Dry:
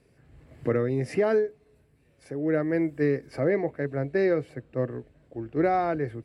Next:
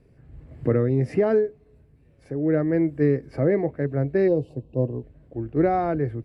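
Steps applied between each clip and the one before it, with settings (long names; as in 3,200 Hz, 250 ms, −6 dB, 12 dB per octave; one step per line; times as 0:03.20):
gain on a spectral selection 0:04.28–0:05.03, 1,100–2,500 Hz −24 dB
spectral tilt −2.5 dB per octave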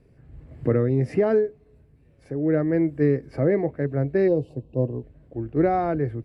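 no processing that can be heard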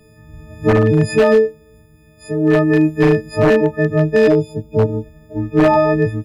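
every partial snapped to a pitch grid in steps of 6 semitones
wave folding −14 dBFS
level +9 dB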